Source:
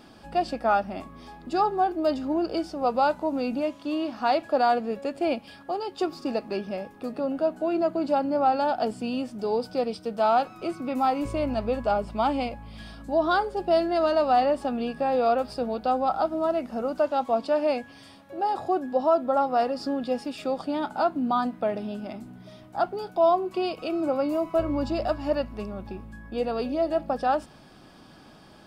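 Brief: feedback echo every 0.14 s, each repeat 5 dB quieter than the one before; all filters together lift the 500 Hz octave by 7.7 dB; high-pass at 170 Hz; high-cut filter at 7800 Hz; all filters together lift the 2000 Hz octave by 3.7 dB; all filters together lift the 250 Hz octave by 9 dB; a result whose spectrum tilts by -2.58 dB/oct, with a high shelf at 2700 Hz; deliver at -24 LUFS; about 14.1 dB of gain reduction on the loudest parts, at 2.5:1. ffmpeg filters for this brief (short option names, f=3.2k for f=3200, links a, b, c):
-af "highpass=170,lowpass=7.8k,equalizer=f=250:t=o:g=9,equalizer=f=500:t=o:g=8,equalizer=f=2k:t=o:g=6.5,highshelf=f=2.7k:g=-4,acompressor=threshold=-33dB:ratio=2.5,aecho=1:1:140|280|420|560|700|840|980:0.562|0.315|0.176|0.0988|0.0553|0.031|0.0173,volume=6dB"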